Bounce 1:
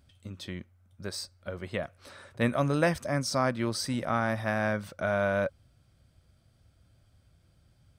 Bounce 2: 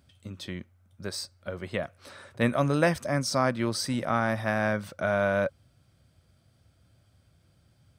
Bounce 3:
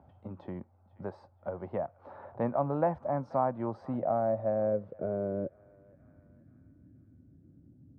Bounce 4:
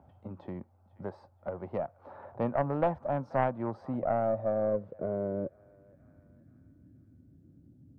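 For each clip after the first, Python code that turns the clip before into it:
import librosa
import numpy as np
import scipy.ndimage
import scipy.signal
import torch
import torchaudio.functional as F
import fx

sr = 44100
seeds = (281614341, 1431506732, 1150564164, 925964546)

y1 = scipy.signal.sosfilt(scipy.signal.butter(2, 76.0, 'highpass', fs=sr, output='sos'), x)
y1 = y1 * 10.0 ** (2.0 / 20.0)
y2 = fx.filter_sweep_lowpass(y1, sr, from_hz=840.0, to_hz=280.0, start_s=3.65, end_s=6.0, q=4.7)
y2 = fx.echo_banded(y2, sr, ms=479, feedback_pct=51, hz=2200.0, wet_db=-22)
y2 = fx.band_squash(y2, sr, depth_pct=40)
y2 = y2 * 10.0 ** (-7.5 / 20.0)
y3 = fx.tracing_dist(y2, sr, depth_ms=0.12)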